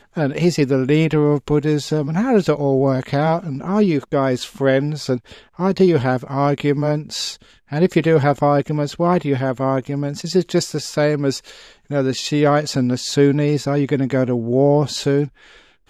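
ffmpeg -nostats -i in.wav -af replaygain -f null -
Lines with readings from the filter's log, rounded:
track_gain = -1.2 dB
track_peak = 0.501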